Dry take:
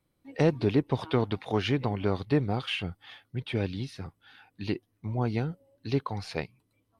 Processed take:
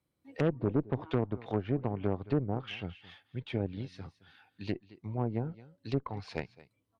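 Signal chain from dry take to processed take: high-pass 48 Hz 24 dB/octave; on a send: delay 218 ms -18.5 dB; on the sum: low-pass that closes with the level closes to 810 Hz, closed at -23 dBFS; Chebyshev shaper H 6 -18 dB, 7 -36 dB, 8 -26 dB, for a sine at -11.5 dBFS; trim -5 dB

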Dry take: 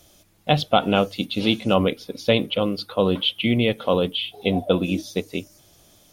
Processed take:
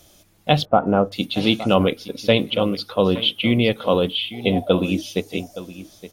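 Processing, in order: 0.65–1.12 s: low-pass 1.4 kHz 24 dB/octave; delay 868 ms -15.5 dB; trim +2 dB

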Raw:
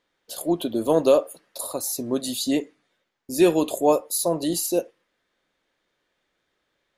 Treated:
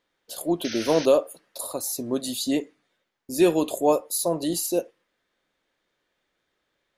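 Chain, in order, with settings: painted sound noise, 0.64–1.06 s, 1.3–6.4 kHz -34 dBFS; trim -1.5 dB

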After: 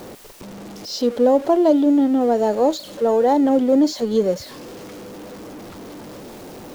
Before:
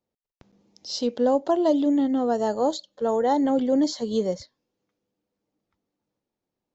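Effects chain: jump at every zero crossing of -34 dBFS; peaking EQ 410 Hz +6 dB 2.3 oct

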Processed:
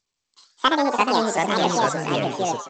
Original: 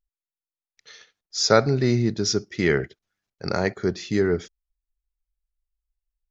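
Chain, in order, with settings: high-pass 65 Hz 12 dB/octave; frequency-shifting echo 162 ms, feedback 42%, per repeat +130 Hz, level -9 dB; speed mistake 33 rpm record played at 78 rpm; ever faster or slower copies 175 ms, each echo -4 st, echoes 3; G.722 64 kbps 16 kHz

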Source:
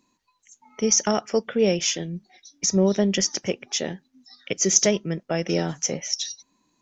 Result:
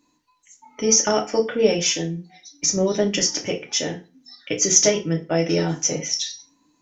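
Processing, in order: FDN reverb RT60 0.31 s, low-frequency decay 1.1×, high-frequency decay 0.9×, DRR 0 dB

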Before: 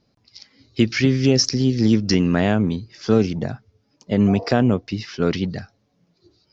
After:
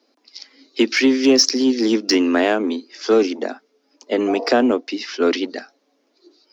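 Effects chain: steep high-pass 250 Hz 72 dB/octave; in parallel at -10 dB: overload inside the chain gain 20 dB; on the sum: trim +3 dB

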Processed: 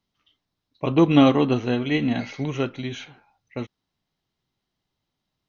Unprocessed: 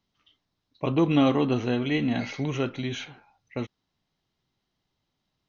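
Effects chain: upward expansion 1.5:1, over -33 dBFS; trim +6.5 dB

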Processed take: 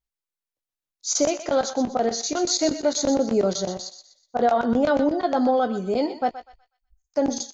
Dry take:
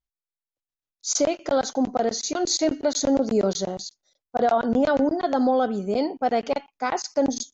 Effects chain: 6.30–7.14 s: inverse Chebyshev band-stop 270–4500 Hz, stop band 80 dB; doubling 17 ms -11 dB; thinning echo 123 ms, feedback 35%, high-pass 1 kHz, level -9.5 dB

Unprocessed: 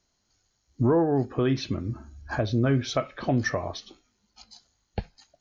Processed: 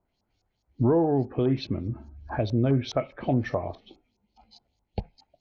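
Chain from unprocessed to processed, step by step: treble shelf 2.5 kHz -11.5 dB; LFO low-pass saw up 4.8 Hz 960–5700 Hz; high-order bell 1.4 kHz -8 dB 1 oct, from 3.77 s -14.5 dB

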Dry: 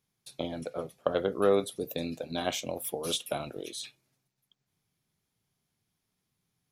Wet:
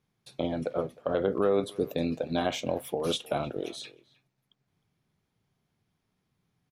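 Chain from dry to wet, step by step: low-pass 1.9 kHz 6 dB/octave; peak limiter -21.5 dBFS, peak gain reduction 10 dB; speakerphone echo 310 ms, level -20 dB; trim +6 dB

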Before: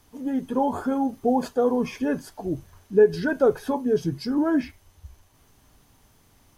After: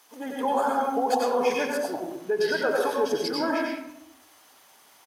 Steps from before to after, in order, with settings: high-pass 670 Hz 12 dB/octave; peak limiter -23 dBFS, peak gain reduction 8 dB; tempo 1.3×; reverberation RT60 0.85 s, pre-delay 87 ms, DRR -1.5 dB; trim +5 dB

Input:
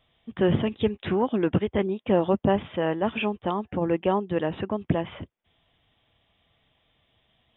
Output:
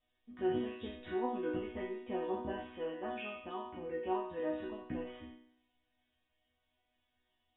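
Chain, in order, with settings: spectral sustain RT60 0.40 s; low-pass 3.5 kHz; peaking EQ 72 Hz +11.5 dB 0.42 oct; chord resonator B3 major, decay 0.67 s; trim +8 dB

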